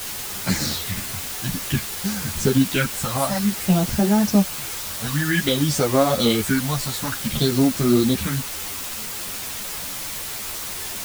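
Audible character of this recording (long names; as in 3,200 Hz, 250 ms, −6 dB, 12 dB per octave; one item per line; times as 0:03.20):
phaser sweep stages 4, 0.55 Hz, lowest notch 350–3,300 Hz
a quantiser's noise floor 6 bits, dither triangular
a shimmering, thickened sound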